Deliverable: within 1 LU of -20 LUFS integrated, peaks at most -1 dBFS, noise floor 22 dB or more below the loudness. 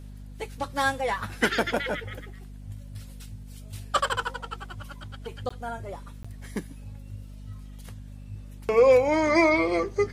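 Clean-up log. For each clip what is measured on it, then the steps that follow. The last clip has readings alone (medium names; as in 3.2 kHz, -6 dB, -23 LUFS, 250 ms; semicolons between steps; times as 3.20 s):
dropouts 2; longest dropout 15 ms; hum 50 Hz; highest harmonic 250 Hz; hum level -39 dBFS; loudness -25.5 LUFS; peak level -8.5 dBFS; loudness target -20.0 LUFS
-> interpolate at 5.49/6.23 s, 15 ms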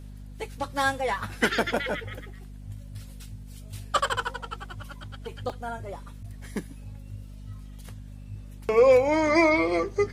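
dropouts 0; hum 50 Hz; highest harmonic 250 Hz; hum level -39 dBFS
-> hum notches 50/100/150/200/250 Hz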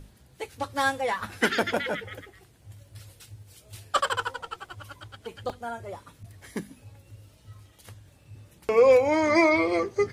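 hum not found; loudness -25.0 LUFS; peak level -8.5 dBFS; loudness target -20.0 LUFS
-> trim +5 dB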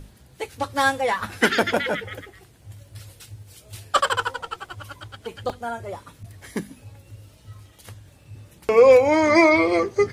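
loudness -20.0 LUFS; peak level -3.5 dBFS; noise floor -52 dBFS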